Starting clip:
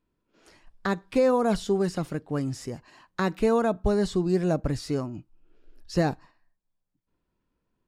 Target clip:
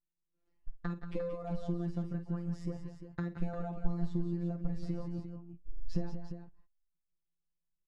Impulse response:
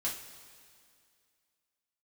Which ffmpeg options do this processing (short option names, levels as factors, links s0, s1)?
-af "agate=range=0.0631:threshold=0.00398:ratio=16:detection=peak,afftfilt=real='hypot(re,im)*cos(PI*b)':imag='0':win_size=1024:overlap=0.75,acompressor=threshold=0.0126:ratio=6,aemphasis=mode=reproduction:type=riaa,aecho=1:1:50|168|181|350:0.224|0.15|0.335|0.316,volume=0.708"